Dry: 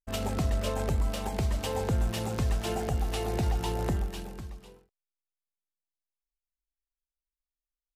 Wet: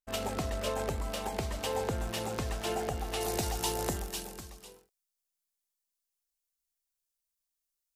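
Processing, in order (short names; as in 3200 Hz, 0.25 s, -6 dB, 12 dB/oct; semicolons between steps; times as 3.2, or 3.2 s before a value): tone controls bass -9 dB, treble 0 dB, from 3.2 s treble +11 dB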